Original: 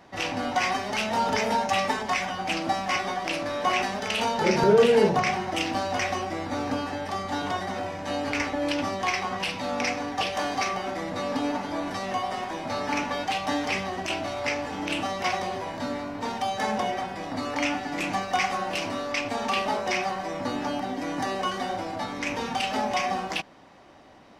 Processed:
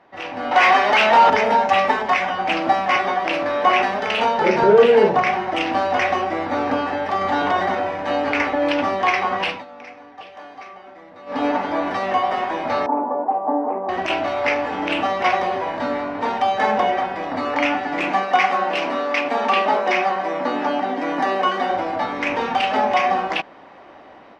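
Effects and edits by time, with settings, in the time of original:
0.51–1.30 s: overdrive pedal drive 15 dB, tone 6.9 kHz, clips at -13 dBFS
7.21–7.75 s: level flattener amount 50%
9.48–11.43 s: dip -19.5 dB, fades 0.17 s
12.86–13.89 s: Chebyshev band-pass 230–980 Hz, order 3
18.08–21.71 s: high-pass 160 Hz 24 dB/octave
whole clip: tone controls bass -11 dB, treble -13 dB; level rider gain up to 10 dB; treble shelf 7.6 kHz -12 dB

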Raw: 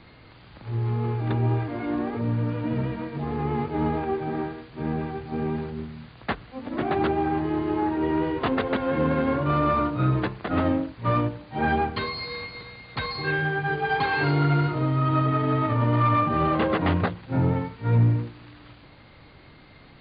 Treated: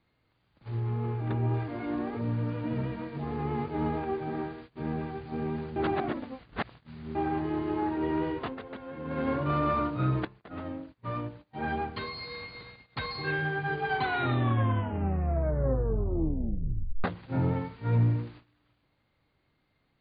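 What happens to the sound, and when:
0.80–1.54 s: distance through air 180 m
5.76–7.15 s: reverse
8.32–9.27 s: dip -11.5 dB, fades 0.23 s
10.25–12.82 s: fade in, from -14.5 dB
13.88 s: tape stop 3.16 s
whole clip: gate -42 dBFS, range -18 dB; trim -5 dB

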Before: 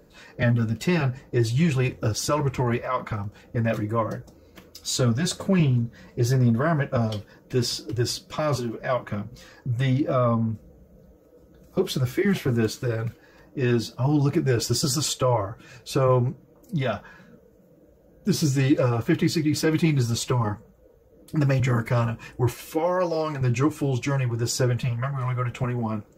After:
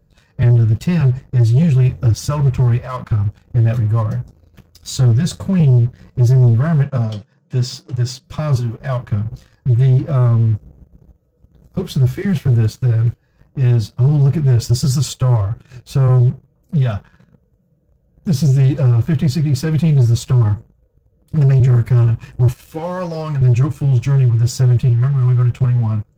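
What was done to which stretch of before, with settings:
6.84–8.24 s: elliptic band-pass 140–7600 Hz
whole clip: resonant low shelf 190 Hz +13 dB, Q 1.5; band-stop 2.1 kHz, Q 14; waveshaping leveller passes 2; trim -7 dB

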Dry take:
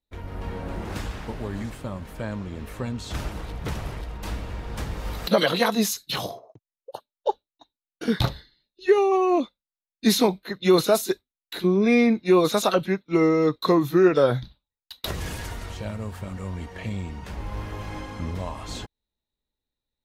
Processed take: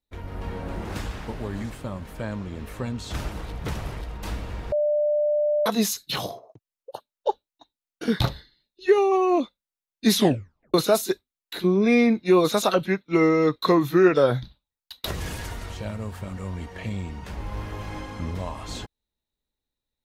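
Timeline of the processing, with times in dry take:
4.72–5.66 s: bleep 595 Hz -19 dBFS
10.14 s: tape stop 0.60 s
12.87–14.14 s: dynamic bell 2 kHz, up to +4 dB, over -42 dBFS, Q 0.92

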